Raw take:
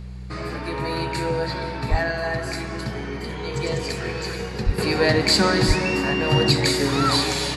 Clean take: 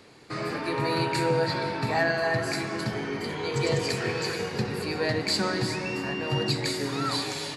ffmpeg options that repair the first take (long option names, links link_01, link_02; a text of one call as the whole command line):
ffmpeg -i in.wav -filter_complex "[0:a]bandreject=frequency=62.4:width_type=h:width=4,bandreject=frequency=124.8:width_type=h:width=4,bandreject=frequency=187.2:width_type=h:width=4,asplit=3[link_01][link_02][link_03];[link_01]afade=type=out:start_time=1.9:duration=0.02[link_04];[link_02]highpass=frequency=140:width=0.5412,highpass=frequency=140:width=1.3066,afade=type=in:start_time=1.9:duration=0.02,afade=type=out:start_time=2.02:duration=0.02[link_05];[link_03]afade=type=in:start_time=2.02:duration=0.02[link_06];[link_04][link_05][link_06]amix=inputs=3:normalize=0,asplit=3[link_07][link_08][link_09];[link_07]afade=type=out:start_time=4.65:duration=0.02[link_10];[link_08]highpass=frequency=140:width=0.5412,highpass=frequency=140:width=1.3066,afade=type=in:start_time=4.65:duration=0.02,afade=type=out:start_time=4.77:duration=0.02[link_11];[link_09]afade=type=in:start_time=4.77:duration=0.02[link_12];[link_10][link_11][link_12]amix=inputs=3:normalize=0,asplit=3[link_13][link_14][link_15];[link_13]afade=type=out:start_time=5.67:duration=0.02[link_16];[link_14]highpass=frequency=140:width=0.5412,highpass=frequency=140:width=1.3066,afade=type=in:start_time=5.67:duration=0.02,afade=type=out:start_time=5.79:duration=0.02[link_17];[link_15]afade=type=in:start_time=5.79:duration=0.02[link_18];[link_16][link_17][link_18]amix=inputs=3:normalize=0,asetnsamples=nb_out_samples=441:pad=0,asendcmd='4.78 volume volume -8.5dB',volume=0dB" out.wav